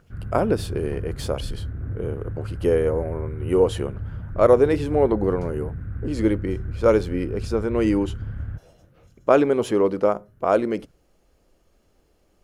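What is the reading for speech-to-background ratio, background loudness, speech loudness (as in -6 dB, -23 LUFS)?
10.0 dB, -33.0 LUFS, -23.0 LUFS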